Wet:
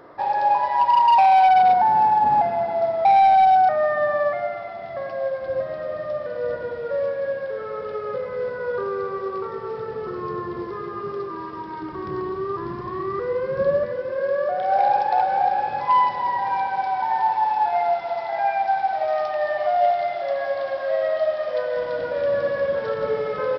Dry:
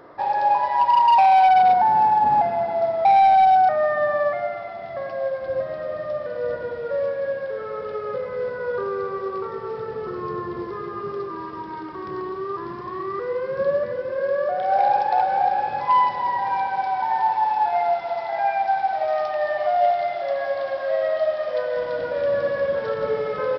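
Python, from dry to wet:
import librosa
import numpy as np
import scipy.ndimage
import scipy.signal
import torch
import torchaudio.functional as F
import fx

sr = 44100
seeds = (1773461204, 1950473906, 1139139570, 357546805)

y = fx.low_shelf(x, sr, hz=220.0, db=9.0, at=(11.82, 13.85))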